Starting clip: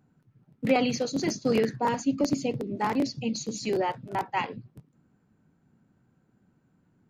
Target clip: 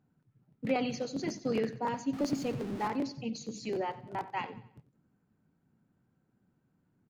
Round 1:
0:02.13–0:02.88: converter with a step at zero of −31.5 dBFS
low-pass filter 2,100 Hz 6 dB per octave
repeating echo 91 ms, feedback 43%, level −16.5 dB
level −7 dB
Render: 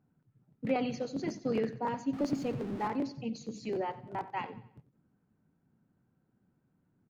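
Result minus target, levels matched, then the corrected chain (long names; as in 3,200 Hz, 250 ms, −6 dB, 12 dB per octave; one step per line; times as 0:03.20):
4,000 Hz band −4.0 dB
0:02.13–0:02.88: converter with a step at zero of −31.5 dBFS
low-pass filter 5,200 Hz 6 dB per octave
repeating echo 91 ms, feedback 43%, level −16.5 dB
level −7 dB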